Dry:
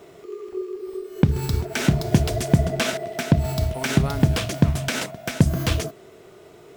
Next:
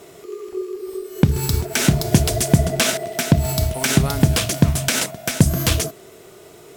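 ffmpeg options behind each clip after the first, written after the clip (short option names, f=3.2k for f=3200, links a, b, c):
-af "lowpass=12k,aemphasis=mode=production:type=50fm,volume=3dB"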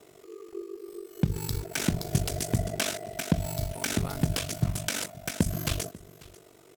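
-af "aeval=exprs='val(0)*sin(2*PI*24*n/s)':c=same,aecho=1:1:542:0.0841,volume=-8.5dB"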